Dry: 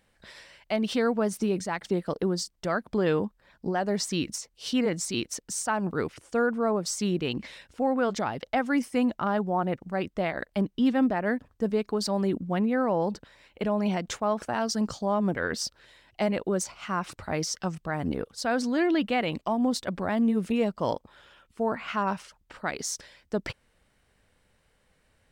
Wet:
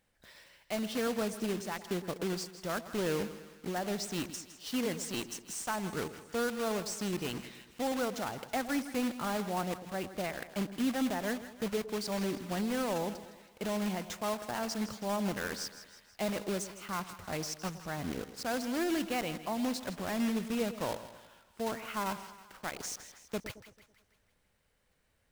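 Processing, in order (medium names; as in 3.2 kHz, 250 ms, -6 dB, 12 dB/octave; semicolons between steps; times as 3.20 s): block-companded coder 3-bit; two-band feedback delay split 880 Hz, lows 110 ms, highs 161 ms, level -13 dB; trim -8 dB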